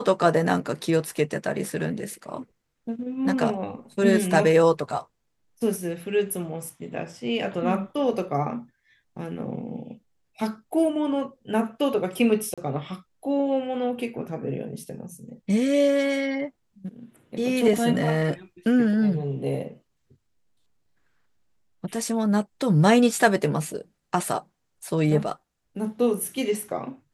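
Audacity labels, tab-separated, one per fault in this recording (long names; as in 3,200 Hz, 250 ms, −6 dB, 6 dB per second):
12.540000	12.580000	drop-out 36 ms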